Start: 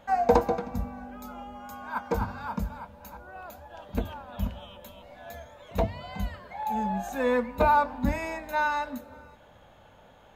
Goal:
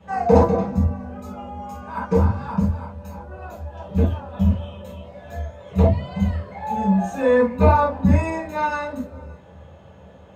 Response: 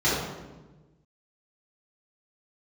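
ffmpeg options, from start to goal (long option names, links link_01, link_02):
-filter_complex "[0:a]lowshelf=frequency=230:gain=10[link_01];[1:a]atrim=start_sample=2205,atrim=end_sample=4410,asetrate=57330,aresample=44100[link_02];[link_01][link_02]afir=irnorm=-1:irlink=0,volume=-9.5dB"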